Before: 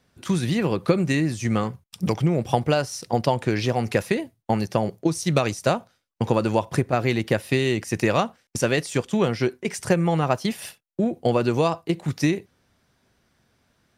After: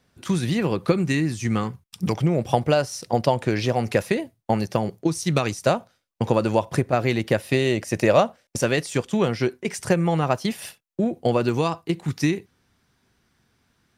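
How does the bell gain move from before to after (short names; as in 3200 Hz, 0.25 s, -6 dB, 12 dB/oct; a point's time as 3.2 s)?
bell 590 Hz 0.47 oct
-0.5 dB
from 0.92 s -7 dB
from 2.12 s +3 dB
from 4.76 s -4 dB
from 5.65 s +2.5 dB
from 7.54 s +9.5 dB
from 8.63 s 0 dB
from 11.49 s -7.5 dB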